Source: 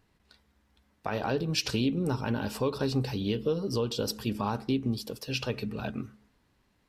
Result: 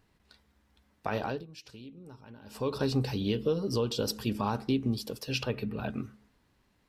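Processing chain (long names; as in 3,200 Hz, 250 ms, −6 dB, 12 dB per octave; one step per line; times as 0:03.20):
0:01.17–0:02.75: duck −20 dB, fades 0.30 s
0:05.43–0:05.90: parametric band 6,600 Hz −14.5 dB 1 octave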